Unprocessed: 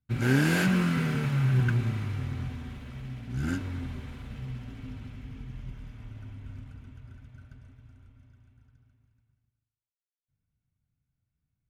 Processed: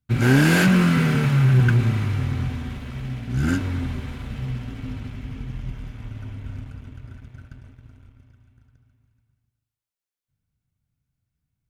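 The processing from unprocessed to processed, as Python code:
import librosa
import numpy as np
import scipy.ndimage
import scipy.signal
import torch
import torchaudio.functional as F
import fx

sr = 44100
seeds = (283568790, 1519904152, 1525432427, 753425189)

y = fx.leveller(x, sr, passes=1)
y = F.gain(torch.from_numpy(y), 5.0).numpy()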